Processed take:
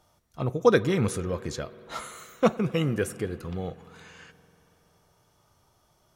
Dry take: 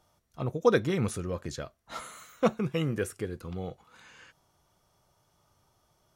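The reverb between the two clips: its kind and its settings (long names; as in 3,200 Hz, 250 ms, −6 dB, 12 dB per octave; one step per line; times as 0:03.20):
spring reverb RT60 3.4 s, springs 47 ms, chirp 45 ms, DRR 16.5 dB
level +3.5 dB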